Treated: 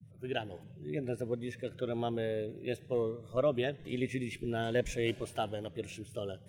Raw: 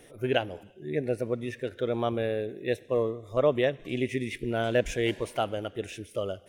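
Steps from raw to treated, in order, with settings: fade-in on the opening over 0.55 s; band noise 90–180 Hz -50 dBFS; Shepard-style phaser rising 1.2 Hz; trim -4 dB

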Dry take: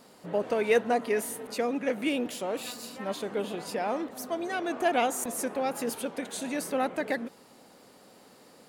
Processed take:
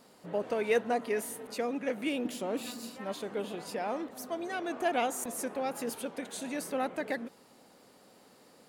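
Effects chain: 2.25–2.90 s: peaking EQ 250 Hz +9.5 dB 0.81 oct; trim -4 dB

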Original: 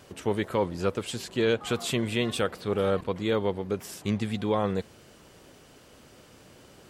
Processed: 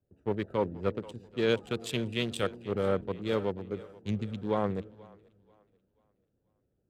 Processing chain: local Wiener filter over 41 samples; two-band feedback delay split 380 Hz, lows 354 ms, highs 484 ms, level -14.5 dB; three bands expanded up and down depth 70%; trim -3.5 dB

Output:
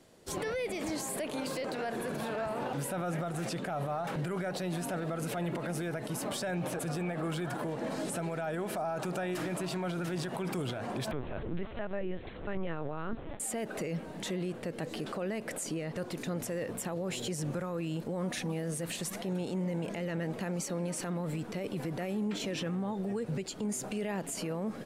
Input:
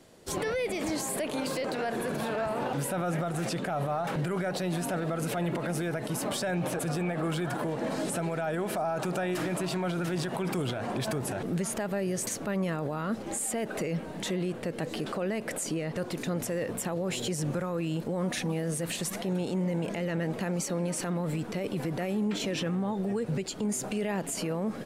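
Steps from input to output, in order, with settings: 11.11–13.40 s: LPC vocoder at 8 kHz pitch kept; trim -4 dB

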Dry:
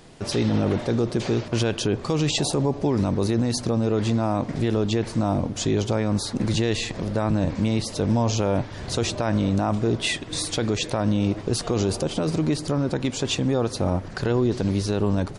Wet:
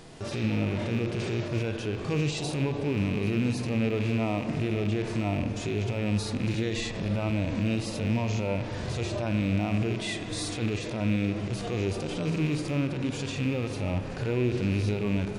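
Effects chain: rattle on loud lows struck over -24 dBFS, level -19 dBFS; peak limiter -22 dBFS, peak gain reduction 11.5 dB; on a send: repeats whose band climbs or falls 276 ms, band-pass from 310 Hz, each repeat 0.7 oct, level -11 dB; on the sum: harmonic-percussive split percussive -17 dB; spring tank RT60 3.7 s, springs 40/57 ms, chirp 20 ms, DRR 9 dB; trim +4.5 dB

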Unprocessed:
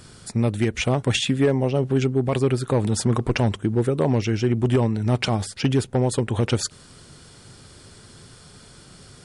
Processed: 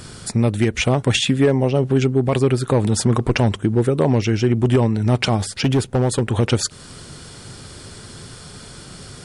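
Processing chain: in parallel at +1 dB: compression, threshold -32 dBFS, peak gain reduction 16 dB; 5.53–6.36 s: on the sum: overload inside the chain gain 14 dB; trim +2 dB

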